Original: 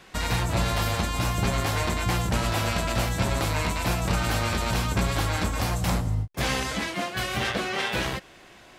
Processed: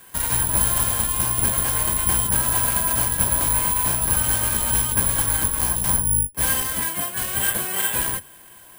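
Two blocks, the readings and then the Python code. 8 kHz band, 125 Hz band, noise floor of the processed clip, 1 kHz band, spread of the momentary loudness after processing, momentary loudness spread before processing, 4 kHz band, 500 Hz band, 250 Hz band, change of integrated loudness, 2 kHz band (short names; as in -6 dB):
+15.5 dB, -3.0 dB, -46 dBFS, +0.5 dB, 4 LU, 3 LU, -1.0 dB, -4.0 dB, -3.5 dB, +7.5 dB, 0.0 dB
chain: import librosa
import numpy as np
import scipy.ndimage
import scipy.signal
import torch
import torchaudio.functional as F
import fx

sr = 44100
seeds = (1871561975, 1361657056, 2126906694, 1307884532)

y = fx.octave_divider(x, sr, octaves=1, level_db=-1.0)
y = fx.small_body(y, sr, hz=(1000.0, 1600.0, 3100.0), ring_ms=50, db=13)
y = (np.kron(y[::4], np.eye(4)[0]) * 4)[:len(y)]
y = F.gain(torch.from_numpy(y), -4.5).numpy()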